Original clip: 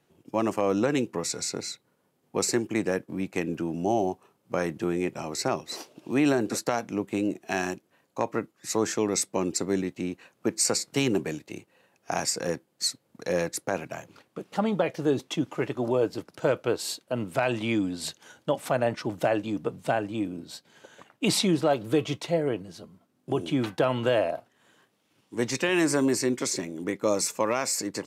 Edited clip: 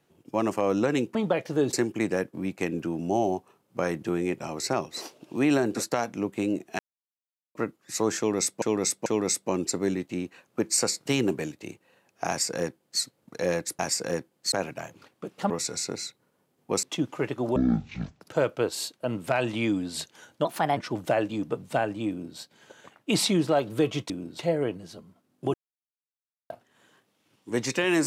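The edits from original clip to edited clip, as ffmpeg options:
-filter_complex "[0:a]asplit=19[s0][s1][s2][s3][s4][s5][s6][s7][s8][s9][s10][s11][s12][s13][s14][s15][s16][s17][s18];[s0]atrim=end=1.152[s19];[s1]atrim=start=14.638:end=15.222[s20];[s2]atrim=start=2.478:end=7.54,asetpts=PTS-STARTPTS,afade=t=out:st=5.058:d=0.004:c=hsin[s21];[s3]atrim=start=7.54:end=8.3,asetpts=PTS-STARTPTS,volume=0[s22];[s4]atrim=start=8.3:end=9.372,asetpts=PTS-STARTPTS,afade=t=in:d=0.004:c=hsin[s23];[s5]atrim=start=8.928:end=9.372[s24];[s6]atrim=start=8.928:end=13.662[s25];[s7]atrim=start=12.148:end=12.882[s26];[s8]atrim=start=13.658:end=14.642[s27];[s9]atrim=start=1.148:end=2.482[s28];[s10]atrim=start=15.218:end=15.954[s29];[s11]atrim=start=15.95:end=16.28,asetpts=PTS-STARTPTS,asetrate=22491,aresample=44100,atrim=end_sample=28535,asetpts=PTS-STARTPTS[s30];[s12]atrim=start=16.276:end=18.524[s31];[s13]atrim=start=18.52:end=18.91,asetpts=PTS-STARTPTS,asetrate=53361,aresample=44100,atrim=end_sample=14214,asetpts=PTS-STARTPTS[s32];[s14]atrim=start=18.906:end=22.242[s33];[s15]atrim=start=20.228:end=20.522[s34];[s16]atrim=start=22.238:end=23.39,asetpts=PTS-STARTPTS,afade=t=out:st=1.148:d=0.004:c=hsin[s35];[s17]atrim=start=23.39:end=24.35,asetpts=PTS-STARTPTS,volume=0[s36];[s18]atrim=start=24.35,asetpts=PTS-STARTPTS,afade=t=in:d=0.004:c=hsin[s37];[s19][s20]acrossfade=d=0.004:c1=hsin:c2=hsin[s38];[s21][s22][s23]concat=n=3:v=0:a=1[s39];[s38][s39]acrossfade=d=0.004:c1=hsin:c2=hsin[s40];[s40][s24]acrossfade=d=0.004:c1=hsin:c2=hsin[s41];[s41][s25]acrossfade=d=0.004:c1=hsin:c2=hsin[s42];[s42][s26]acrossfade=d=0.004:c1=hsin:c2=hsin[s43];[s43][s27]acrossfade=d=0.004:c1=hsin:c2=hsin[s44];[s44][s28]acrossfade=d=0.004:c1=hsin:c2=hsin[s45];[s45][s29]acrossfade=d=0.004:c1=hsin:c2=hsin[s46];[s46][s30]acrossfade=d=0.004:c1=hsin:c2=hsin[s47];[s47][s31]acrossfade=d=0.004:c1=hsin:c2=hsin[s48];[s48][s32]acrossfade=d=0.004:c1=hsin:c2=hsin[s49];[s49][s33]acrossfade=d=0.004:c1=hsin:c2=hsin[s50];[s50][s34]acrossfade=d=0.004:c1=hsin:c2=hsin[s51];[s35][s36][s37]concat=n=3:v=0:a=1[s52];[s51][s52]acrossfade=d=0.004:c1=hsin:c2=hsin"

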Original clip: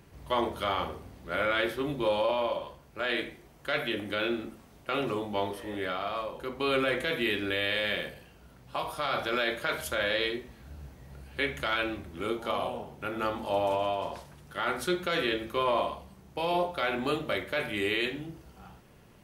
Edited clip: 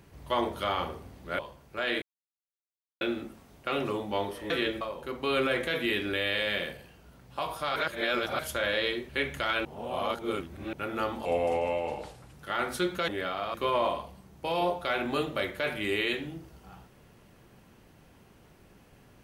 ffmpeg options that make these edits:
-filter_complex "[0:a]asplit=15[s0][s1][s2][s3][s4][s5][s6][s7][s8][s9][s10][s11][s12][s13][s14];[s0]atrim=end=1.392[s15];[s1]atrim=start=2.608:end=3.24,asetpts=PTS-STARTPTS,afade=t=out:st=0.628:d=0.004:c=hsin[s16];[s2]atrim=start=3.24:end=4.23,asetpts=PTS-STARTPTS,volume=0[s17];[s3]atrim=start=4.23:end=5.722,asetpts=PTS-STARTPTS,afade=t=in:d=0.004:c=hsin[s18];[s4]atrim=start=15.158:end=15.472[s19];[s5]atrim=start=6.178:end=9.132[s20];[s6]atrim=start=9.128:end=9.762,asetpts=PTS-STARTPTS,areverse[s21];[s7]atrim=start=9.758:end=10.462[s22];[s8]atrim=start=11.318:end=11.882[s23];[s9]atrim=start=11.878:end=12.962,asetpts=PTS-STARTPTS,areverse[s24];[s10]atrim=start=12.958:end=13.484[s25];[s11]atrim=start=13.48:end=14.41,asetpts=PTS-STARTPTS,asetrate=37926,aresample=44100[s26];[s12]atrim=start=14.406:end=15.162[s27];[s13]atrim=start=5.718:end=6.182[s28];[s14]atrim=start=15.468[s29];[s16][s17][s18]concat=n=3:v=0:a=1[s30];[s15][s30]acrossfade=d=0.004:c1=hsin:c2=hsin[s31];[s31][s19]acrossfade=d=0.004:c1=hsin:c2=hsin[s32];[s32][s20]acrossfade=d=0.004:c1=hsin:c2=hsin[s33];[s33][s21]acrossfade=d=0.004:c1=hsin:c2=hsin[s34];[s34][s22]acrossfade=d=0.004:c1=hsin:c2=hsin[s35];[s35][s23]acrossfade=d=0.004:c1=hsin:c2=hsin[s36];[s36][s24]acrossfade=d=0.004:c1=hsin:c2=hsin[s37];[s37][s25]acrossfade=d=0.004:c1=hsin:c2=hsin[s38];[s38][s26]acrossfade=d=0.004:c1=hsin:c2=hsin[s39];[s39][s27]acrossfade=d=0.004:c1=hsin:c2=hsin[s40];[s40][s28]acrossfade=d=0.004:c1=hsin:c2=hsin[s41];[s41][s29]acrossfade=d=0.004:c1=hsin:c2=hsin"

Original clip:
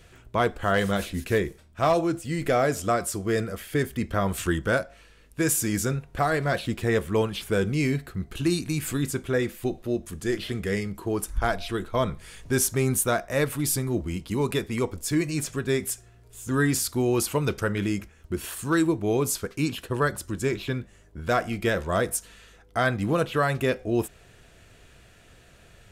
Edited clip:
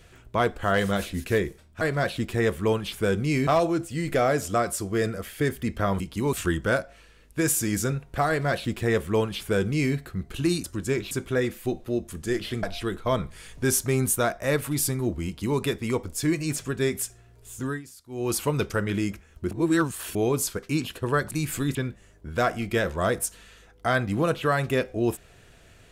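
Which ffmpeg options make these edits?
-filter_complex "[0:a]asplit=14[s0][s1][s2][s3][s4][s5][s6][s7][s8][s9][s10][s11][s12][s13];[s0]atrim=end=1.812[s14];[s1]atrim=start=6.298:end=7.962[s15];[s2]atrim=start=1.808:end=4.342[s16];[s3]atrim=start=14.138:end=14.472[s17];[s4]atrim=start=4.338:end=8.652[s18];[s5]atrim=start=20.188:end=20.662[s19];[s6]atrim=start=9.088:end=10.612[s20];[s7]atrim=start=11.508:end=16.7,asetpts=PTS-STARTPTS,afade=t=out:st=4.912:d=0.28:silence=0.0891251[s21];[s8]atrim=start=16.7:end=16.97,asetpts=PTS-STARTPTS,volume=0.0891[s22];[s9]atrim=start=16.97:end=18.392,asetpts=PTS-STARTPTS,afade=t=in:d=0.28:silence=0.0891251[s23];[s10]atrim=start=18.388:end=19.032,asetpts=PTS-STARTPTS,areverse[s24];[s11]atrim=start=19.028:end=20.192[s25];[s12]atrim=start=8.648:end=9.092[s26];[s13]atrim=start=20.658[s27];[s14][s15]acrossfade=d=0.004:c1=hsin:c2=hsin[s28];[s28][s16]acrossfade=d=0.004:c1=hsin:c2=hsin[s29];[s29][s17]acrossfade=d=0.004:c1=hsin:c2=hsin[s30];[s30][s18]acrossfade=d=0.004:c1=hsin:c2=hsin[s31];[s31][s19]acrossfade=d=0.004:c1=hsin:c2=hsin[s32];[s32][s20]acrossfade=d=0.004:c1=hsin:c2=hsin[s33];[s21][s22][s23]concat=n=3:v=0:a=1[s34];[s33][s34]acrossfade=d=0.004:c1=hsin:c2=hsin[s35];[s35][s24]acrossfade=d=0.004:c1=hsin:c2=hsin[s36];[s36][s25]acrossfade=d=0.004:c1=hsin:c2=hsin[s37];[s37][s26]acrossfade=d=0.004:c1=hsin:c2=hsin[s38];[s38][s27]acrossfade=d=0.004:c1=hsin:c2=hsin"

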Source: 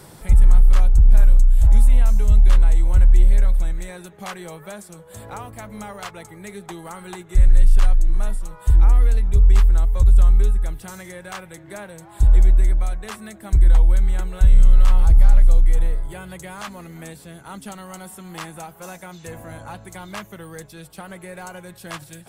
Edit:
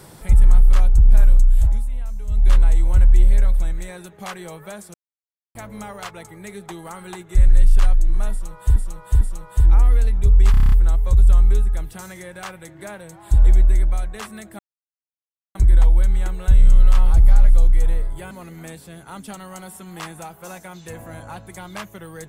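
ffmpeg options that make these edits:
-filter_complex "[0:a]asplit=16[s0][s1][s2][s3][s4][s5][s6][s7][s8][s9][s10][s11][s12][s13][s14][s15];[s0]atrim=end=1.89,asetpts=PTS-STARTPTS,afade=t=out:st=1.6:d=0.29:c=qua:silence=0.237137[s16];[s1]atrim=start=1.89:end=2.2,asetpts=PTS-STARTPTS,volume=0.237[s17];[s2]atrim=start=2.2:end=4.94,asetpts=PTS-STARTPTS,afade=t=in:d=0.29:c=qua:silence=0.237137,afade=t=out:st=2.736:d=0.004:c=hsin[s18];[s3]atrim=start=4.94:end=5.55,asetpts=PTS-STARTPTS,volume=0[s19];[s4]atrim=start=5.55:end=8.762,asetpts=PTS-STARTPTS,afade=t=in:d=0.004:c=hsin[s20];[s5]atrim=start=8.308:end=8.762[s21];[s6]atrim=start=8.308:end=9.642[s22];[s7]atrim=start=9.608:end=9.642[s23];[s8]atrim=start=9.608:end=9.642[s24];[s9]atrim=start=9.608:end=9.642[s25];[s10]atrim=start=9.608:end=9.642[s26];[s11]atrim=start=9.608:end=9.642[s27];[s12]atrim=start=9.608:end=9.642[s28];[s13]atrim=start=9.608:end=13.48,asetpts=PTS-STARTPTS,afade=t=out:st=3.868:d=0.004:c=hsin,apad=pad_dur=0.96[s29];[s14]atrim=start=13.48:end=16.242,asetpts=PTS-STARTPTS,afade=t=in:d=0.004:c=hsin[s30];[s15]atrim=start=16.688[s31];[s16][s17][s18][s19][s20]concat=n=5:v=0:a=1[s32];[s32][s21]acrossfade=d=0.004:c1=hsin:c2=hsin[s33];[s33][s22]acrossfade=d=0.004:c1=hsin:c2=hsin[s34];[s34][s23]acrossfade=d=0.004:c1=hsin:c2=hsin[s35];[s35][s24]acrossfade=d=0.004:c1=hsin:c2=hsin[s36];[s36][s25]acrossfade=d=0.004:c1=hsin:c2=hsin[s37];[s37][s26]acrossfade=d=0.004:c1=hsin:c2=hsin[s38];[s38][s27]acrossfade=d=0.004:c1=hsin:c2=hsin[s39];[s39][s28]acrossfade=d=0.004:c1=hsin:c2=hsin[s40];[s29][s30]concat=n=2:v=0:a=1[s41];[s40][s41]acrossfade=d=0.004:c1=hsin:c2=hsin[s42];[s42][s31]acrossfade=d=0.004:c1=hsin:c2=hsin"

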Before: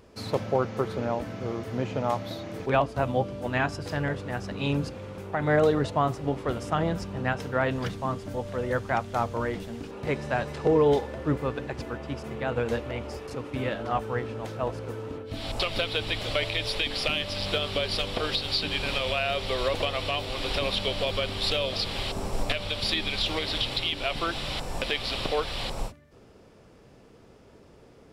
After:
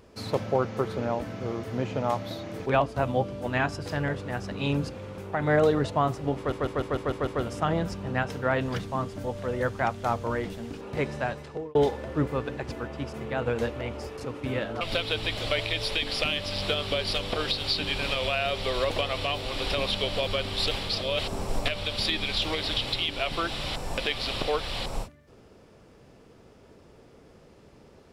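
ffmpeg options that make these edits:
-filter_complex "[0:a]asplit=11[s0][s1][s2][s3][s4][s5][s6][s7][s8][s9][s10];[s0]atrim=end=6.522[s11];[s1]atrim=start=6.368:end=6.522[s12];[s2]atrim=start=6.368:end=6.522[s13];[s3]atrim=start=6.368:end=6.522[s14];[s4]atrim=start=6.368:end=6.522[s15];[s5]atrim=start=6.368:end=6.522[s16];[s6]atrim=start=6.368:end=10.85,asetpts=PTS-STARTPTS,afade=t=out:st=3.842:d=0.64[s17];[s7]atrim=start=10.85:end=13.912,asetpts=PTS-STARTPTS,afade=t=in:d=0.004:c=hsin[s18];[s8]atrim=start=15.648:end=21.552[s19];[s9]atrim=start=21.548:end=22.032,asetpts=PTS-STARTPTS,areverse[s20];[s10]atrim=start=22.028[s21];[s11][s12]acrossfade=d=0.004:c1=hsin:c2=hsin[s22];[s22][s13]acrossfade=d=0.004:c1=hsin:c2=hsin[s23];[s23][s14]acrossfade=d=0.004:c1=hsin:c2=hsin[s24];[s24][s15]acrossfade=d=0.004:c1=hsin:c2=hsin[s25];[s25][s16]acrossfade=d=0.004:c1=hsin:c2=hsin[s26];[s17][s18]concat=n=2:v=0:a=1[s27];[s26][s27]acrossfade=d=0.004:c1=hsin:c2=hsin[s28];[s28][s19]acrossfade=d=0.004:c1=hsin:c2=hsin[s29];[s29][s20]acrossfade=d=0.004:c1=hsin:c2=hsin[s30];[s30][s21]acrossfade=d=0.004:c1=hsin:c2=hsin"

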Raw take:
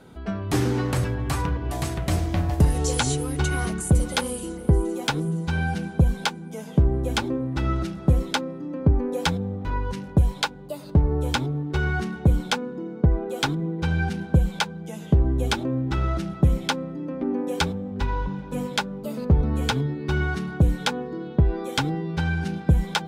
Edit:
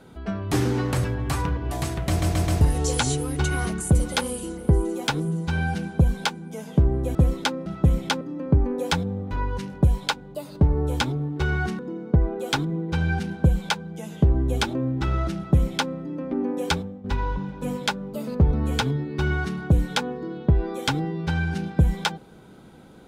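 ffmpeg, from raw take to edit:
-filter_complex "[0:a]asplit=10[s0][s1][s2][s3][s4][s5][s6][s7][s8][s9];[s0]atrim=end=2.222[s10];[s1]atrim=start=2.088:end=2.222[s11];[s2]atrim=start=2.088:end=2.222[s12];[s3]atrim=start=2.088:end=2.222[s13];[s4]atrim=start=2.608:end=7.152[s14];[s5]atrim=start=8.038:end=8.552[s15];[s6]atrim=start=16.248:end=16.802[s16];[s7]atrim=start=8.548:end=12.132[s17];[s8]atrim=start=12.688:end=17.94,asetpts=PTS-STARTPTS,afade=t=out:st=4.922:d=0.33:silence=0.266073[s18];[s9]atrim=start=17.94,asetpts=PTS-STARTPTS,afade=t=in:d=0.004:c=hsin:silence=0.266073[s19];[s10][s11]acrossfade=d=0.004:c1=hsin:c2=hsin[s20];[s20][s12]acrossfade=d=0.004:c1=hsin:c2=hsin[s21];[s21][s13]acrossfade=d=0.004:c1=hsin:c2=hsin[s22];[s22][s14]acrossfade=d=0.004:c1=hsin:c2=hsin[s23];[s23][s15]acrossfade=d=0.004:c1=hsin:c2=hsin[s24];[s24][s16]acrossfade=d=0.004:c1=hsin:c2=hsin[s25];[s25][s17]acrossfade=d=0.004:c1=hsin:c2=hsin[s26];[s18][s19]concat=n=2:v=0:a=1[s27];[s26][s27]acrossfade=d=0.004:c1=hsin:c2=hsin"

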